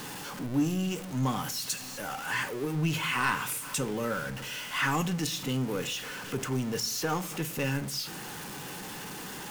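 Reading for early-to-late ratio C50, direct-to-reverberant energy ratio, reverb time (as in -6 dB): 19.5 dB, 10.5 dB, 0.50 s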